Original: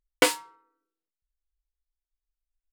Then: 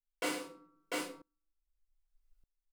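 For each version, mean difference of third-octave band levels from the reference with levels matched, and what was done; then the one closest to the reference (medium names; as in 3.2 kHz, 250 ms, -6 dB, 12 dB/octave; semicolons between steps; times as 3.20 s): 13.0 dB: multi-tap echo 96/696 ms -13/-17 dB; simulated room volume 270 m³, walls furnished, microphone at 5.3 m; sawtooth tremolo in dB swelling 0.82 Hz, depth 27 dB; trim -1.5 dB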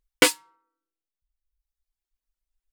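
5.0 dB: band-stop 430 Hz, Q 12; reverb removal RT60 1.1 s; dynamic bell 740 Hz, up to -7 dB, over -38 dBFS, Q 1.1; trim +5 dB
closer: second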